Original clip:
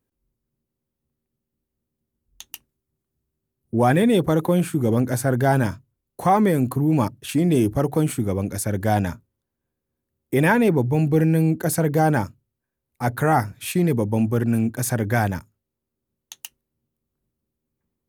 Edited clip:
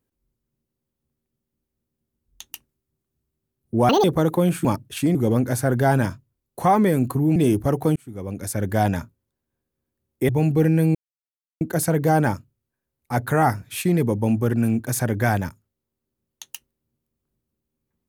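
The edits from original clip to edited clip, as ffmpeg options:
ffmpeg -i in.wav -filter_complex "[0:a]asplit=9[link_01][link_02][link_03][link_04][link_05][link_06][link_07][link_08][link_09];[link_01]atrim=end=3.894[link_10];[link_02]atrim=start=3.89:end=4.15,asetpts=PTS-STARTPTS,asetrate=77175,aresample=44100[link_11];[link_03]atrim=start=4.146:end=4.762[link_12];[link_04]atrim=start=6.968:end=7.472[link_13];[link_05]atrim=start=4.758:end=6.972[link_14];[link_06]atrim=start=7.468:end=8.07,asetpts=PTS-STARTPTS,afade=type=out:start_time=0.598:duration=0.004:curve=hsin[link_15];[link_07]atrim=start=8.07:end=10.402,asetpts=PTS-STARTPTS,afade=type=in:duration=0.68[link_16];[link_08]atrim=start=10.848:end=11.51,asetpts=PTS-STARTPTS,afade=type=out:start_time=0.658:duration=0.004:curve=hsin,apad=pad_dur=0.66[link_17];[link_09]atrim=start=11.51,asetpts=PTS-STARTPTS,afade=type=in:duration=0.004:curve=hsin[link_18];[link_10][link_11]acrossfade=duration=0.004:curve1=hsin:curve2=hsin[link_19];[link_19][link_12]acrossfade=duration=0.004:curve1=hsin:curve2=hsin[link_20];[link_20][link_13]acrossfade=duration=0.004:curve1=hsin:curve2=hsin[link_21];[link_21][link_14]acrossfade=duration=0.004:curve1=hsin:curve2=hsin[link_22];[link_15][link_16]concat=n=2:v=0:a=1[link_23];[link_22][link_23]acrossfade=duration=0.004:curve1=hsin:curve2=hsin[link_24];[link_17][link_18]concat=n=2:v=0:a=1[link_25];[link_24][link_25]acrossfade=duration=0.004:curve1=hsin:curve2=hsin" out.wav

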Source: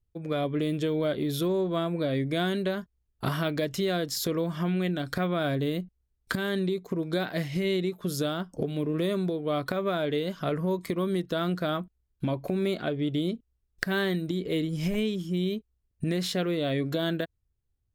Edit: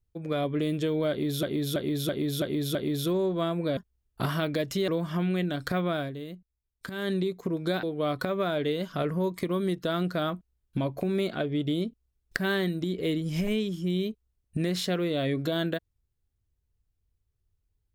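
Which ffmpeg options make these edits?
ffmpeg -i in.wav -filter_complex "[0:a]asplit=11[link_01][link_02][link_03][link_04][link_05][link_06][link_07][link_08][link_09][link_10][link_11];[link_01]atrim=end=1.432[link_12];[link_02]atrim=start=1.098:end=1.432[link_13];[link_03]atrim=start=1.098:end=1.432[link_14];[link_04]atrim=start=1.098:end=1.432[link_15];[link_05]atrim=start=1.098:end=1.432[link_16];[link_06]atrim=start=1.098:end=2.122[link_17];[link_07]atrim=start=2.798:end=3.912[link_18];[link_08]atrim=start=4.338:end=5.58,asetpts=PTS-STARTPTS,afade=type=out:start_time=1.022:duration=0.22:silence=0.316228[link_19];[link_09]atrim=start=5.58:end=6.34,asetpts=PTS-STARTPTS,volume=-10dB[link_20];[link_10]atrim=start=6.34:end=7.292,asetpts=PTS-STARTPTS,afade=type=in:duration=0.22:silence=0.316228[link_21];[link_11]atrim=start=9.298[link_22];[link_12][link_13]acrossfade=duration=0.004:curve1=hsin:curve2=hsin[link_23];[link_23][link_14]acrossfade=duration=0.004:curve1=hsin:curve2=hsin[link_24];[link_24][link_15]acrossfade=duration=0.004:curve1=hsin:curve2=hsin[link_25];[link_25][link_16]acrossfade=duration=0.004:curve1=hsin:curve2=hsin[link_26];[link_26][link_17]acrossfade=duration=0.004:curve1=hsin:curve2=hsin[link_27];[link_27][link_18]acrossfade=duration=0.004:curve1=hsin:curve2=hsin[link_28];[link_19][link_20][link_21]concat=n=3:v=0:a=1[link_29];[link_28][link_29]acrossfade=duration=0.004:curve1=hsin:curve2=hsin[link_30];[link_30][link_22]acrossfade=duration=0.004:curve1=hsin:curve2=hsin" out.wav

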